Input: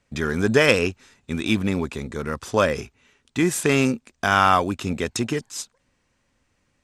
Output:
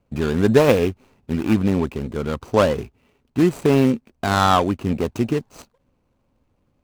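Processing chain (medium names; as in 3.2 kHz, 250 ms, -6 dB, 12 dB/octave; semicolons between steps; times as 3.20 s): median filter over 25 samples; trim +4.5 dB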